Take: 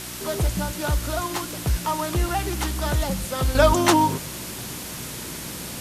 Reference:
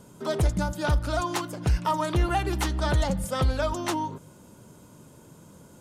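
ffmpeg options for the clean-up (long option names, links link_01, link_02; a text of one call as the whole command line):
ffmpeg -i in.wav -af "bandreject=frequency=61.1:width_type=h:width=4,bandreject=frequency=122.2:width_type=h:width=4,bandreject=frequency=183.3:width_type=h:width=4,bandreject=frequency=244.4:width_type=h:width=4,bandreject=frequency=305.5:width_type=h:width=4,bandreject=frequency=366.6:width_type=h:width=4,afwtdn=0.02,asetnsamples=nb_out_samples=441:pad=0,asendcmd='3.55 volume volume -11dB',volume=0dB" out.wav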